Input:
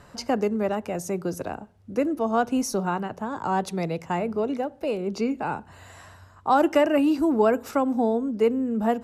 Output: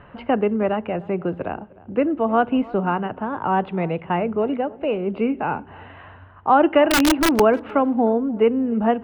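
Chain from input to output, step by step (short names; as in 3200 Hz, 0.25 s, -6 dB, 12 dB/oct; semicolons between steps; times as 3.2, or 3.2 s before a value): elliptic low-pass 3000 Hz, stop band 50 dB; 6.9–7.4 wrapped overs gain 16.5 dB; tape echo 0.305 s, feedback 37%, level -20 dB, low-pass 1500 Hz; gain +5 dB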